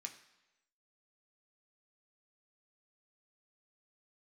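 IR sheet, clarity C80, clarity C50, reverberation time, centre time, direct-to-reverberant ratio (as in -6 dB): 13.5 dB, 11.0 dB, 1.0 s, 13 ms, 3.0 dB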